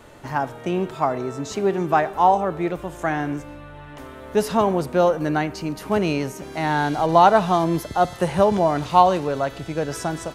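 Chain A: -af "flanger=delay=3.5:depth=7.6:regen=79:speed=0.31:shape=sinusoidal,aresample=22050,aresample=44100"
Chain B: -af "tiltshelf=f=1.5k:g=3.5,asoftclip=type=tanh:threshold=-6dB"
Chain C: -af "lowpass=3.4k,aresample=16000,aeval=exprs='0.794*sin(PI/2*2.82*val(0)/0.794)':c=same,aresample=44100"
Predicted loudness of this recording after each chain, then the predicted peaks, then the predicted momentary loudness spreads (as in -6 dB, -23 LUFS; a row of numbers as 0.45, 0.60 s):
-25.5, -20.0, -11.0 LUFS; -6.5, -6.5, -2.0 dBFS; 11, 10, 9 LU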